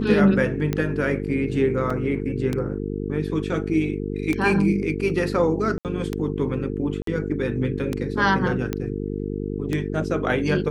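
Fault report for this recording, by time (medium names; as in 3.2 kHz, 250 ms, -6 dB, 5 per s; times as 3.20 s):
buzz 50 Hz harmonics 9 -28 dBFS
tick 33 1/3 rpm -11 dBFS
1.90 s: dropout 4.3 ms
5.78–5.85 s: dropout 68 ms
7.02–7.07 s: dropout 53 ms
8.73 s: pop -12 dBFS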